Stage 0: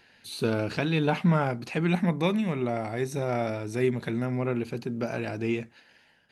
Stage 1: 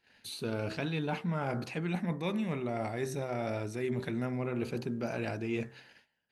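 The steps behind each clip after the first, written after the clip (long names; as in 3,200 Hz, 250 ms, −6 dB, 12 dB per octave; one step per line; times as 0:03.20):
hum removal 64.6 Hz, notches 29
reversed playback
downward compressor, threshold −32 dBFS, peak gain reduction 13.5 dB
reversed playback
noise gate −58 dBFS, range −19 dB
level +1.5 dB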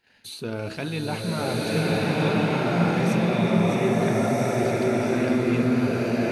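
slow-attack reverb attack 1,430 ms, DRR −7.5 dB
level +4 dB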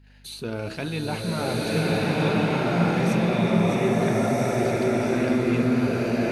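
mains hum 50 Hz, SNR 30 dB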